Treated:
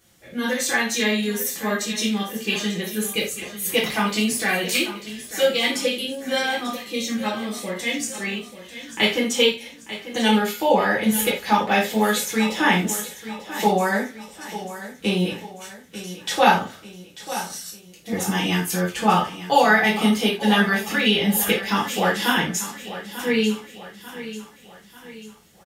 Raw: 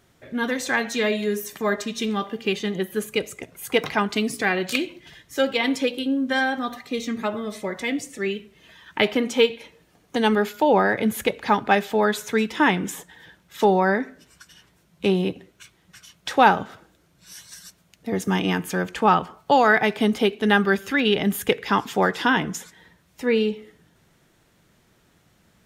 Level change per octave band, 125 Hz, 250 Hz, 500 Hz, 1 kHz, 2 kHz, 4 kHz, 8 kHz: +2.0, +1.0, -1.0, 0.0, +1.5, +5.5, +9.5 dB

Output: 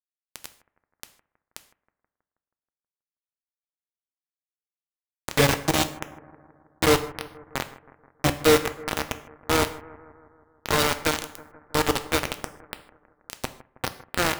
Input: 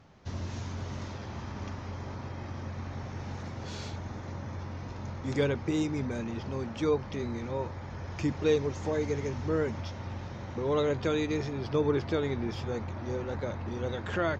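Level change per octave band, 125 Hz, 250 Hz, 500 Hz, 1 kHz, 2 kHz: -1.0, +1.0, +3.0, +9.5, +11.0 dB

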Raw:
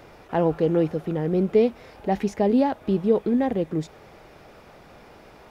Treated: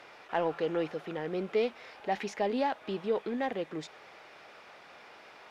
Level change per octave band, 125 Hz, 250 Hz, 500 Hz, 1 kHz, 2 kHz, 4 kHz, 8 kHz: -17.5 dB, -14.0 dB, -9.0 dB, -4.5 dB, 0.0 dB, 0.0 dB, n/a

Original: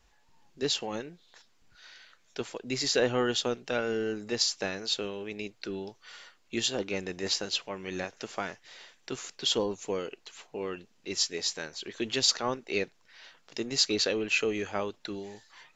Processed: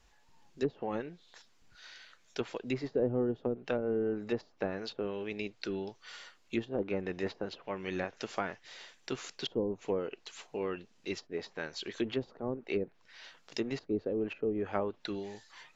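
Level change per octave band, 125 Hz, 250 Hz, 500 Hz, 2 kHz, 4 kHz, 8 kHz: 0.0, 0.0, -1.5, -7.5, -15.0, -20.0 dB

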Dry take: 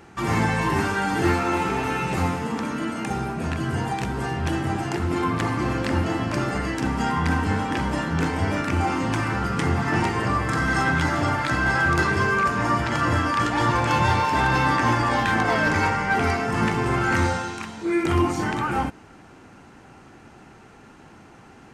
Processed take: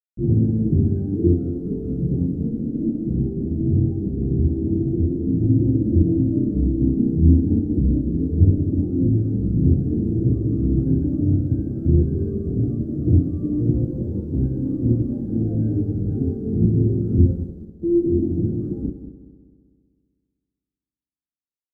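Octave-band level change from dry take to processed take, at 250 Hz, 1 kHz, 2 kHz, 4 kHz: +5.5 dB, under -35 dB, under -40 dB, under -40 dB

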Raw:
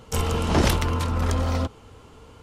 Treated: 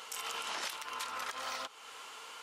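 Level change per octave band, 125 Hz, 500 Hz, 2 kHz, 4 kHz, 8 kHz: under -40 dB, -21.5 dB, -8.0 dB, -7.0 dB, -8.5 dB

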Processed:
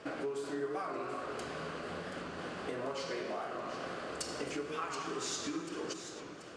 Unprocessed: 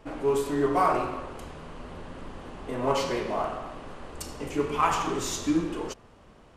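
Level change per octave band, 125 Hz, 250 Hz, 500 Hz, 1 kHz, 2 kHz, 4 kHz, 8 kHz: -12.0, -11.0, -9.5, -12.5, -5.0, -4.5, -5.5 dB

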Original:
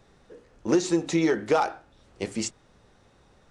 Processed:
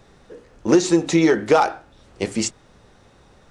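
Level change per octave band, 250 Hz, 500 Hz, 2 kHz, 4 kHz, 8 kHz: +7.0, +7.0, +7.0, +7.0, +7.0 dB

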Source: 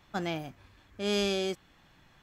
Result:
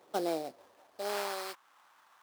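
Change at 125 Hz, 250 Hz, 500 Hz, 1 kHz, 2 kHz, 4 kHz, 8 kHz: under -15 dB, -7.0 dB, -4.0 dB, +2.5 dB, -4.5 dB, -8.5 dB, -2.0 dB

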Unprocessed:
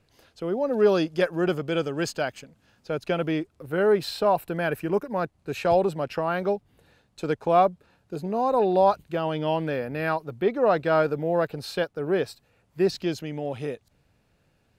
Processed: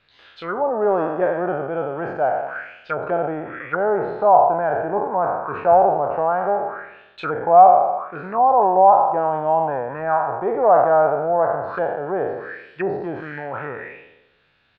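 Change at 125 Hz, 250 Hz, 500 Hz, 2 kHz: -2.5, -2.0, +5.0, +3.0 dB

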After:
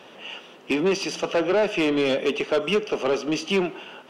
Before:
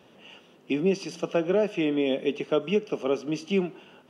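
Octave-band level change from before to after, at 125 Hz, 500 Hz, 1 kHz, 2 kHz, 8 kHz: -0.5 dB, +3.0 dB, +7.5 dB, +8.5 dB, n/a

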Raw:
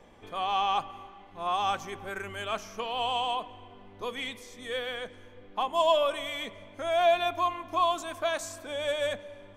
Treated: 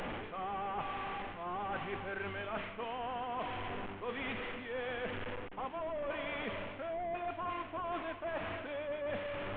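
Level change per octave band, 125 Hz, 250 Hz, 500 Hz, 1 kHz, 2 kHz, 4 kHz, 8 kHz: +1.5 dB, -0.5 dB, -9.0 dB, -10.0 dB, -4.5 dB, -14.5 dB, under -35 dB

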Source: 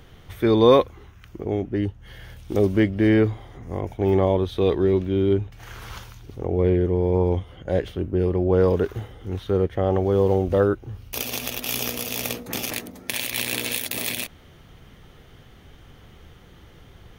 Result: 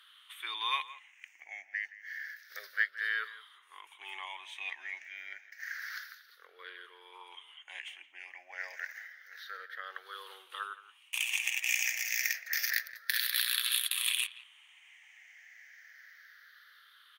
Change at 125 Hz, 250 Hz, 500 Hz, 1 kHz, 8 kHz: under -40 dB, under -40 dB, -40.0 dB, -13.0 dB, -4.0 dB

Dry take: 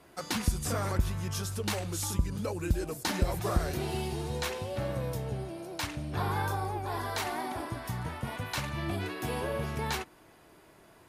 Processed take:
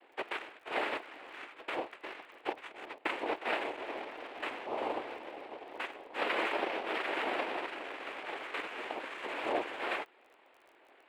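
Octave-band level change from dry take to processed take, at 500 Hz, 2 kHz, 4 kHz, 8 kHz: -2.0, +2.0, -4.0, -23.0 dB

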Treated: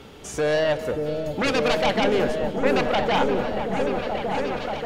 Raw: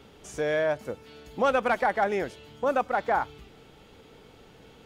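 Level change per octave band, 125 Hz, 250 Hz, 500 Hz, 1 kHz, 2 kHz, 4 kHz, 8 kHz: +12.0 dB, +11.0 dB, +6.0 dB, +2.0 dB, +4.5 dB, +14.5 dB, n/a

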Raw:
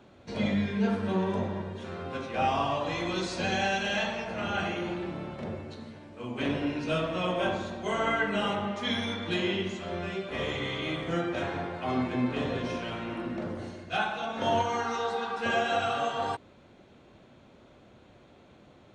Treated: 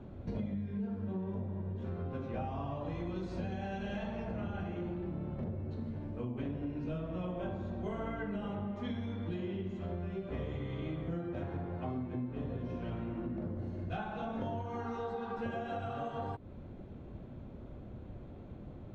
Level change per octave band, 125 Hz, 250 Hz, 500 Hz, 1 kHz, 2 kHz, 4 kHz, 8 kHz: -1.5 dB, -6.0 dB, -9.5 dB, -12.5 dB, -17.0 dB, -21.0 dB, under -20 dB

